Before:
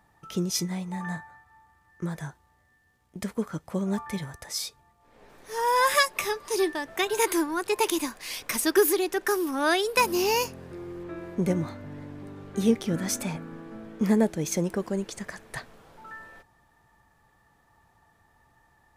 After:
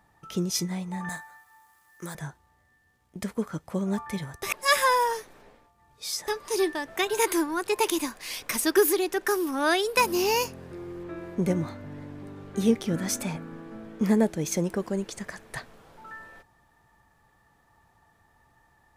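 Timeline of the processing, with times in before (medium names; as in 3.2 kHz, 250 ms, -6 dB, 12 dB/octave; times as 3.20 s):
1.09–2.15 s: RIAA curve recording
4.43–6.28 s: reverse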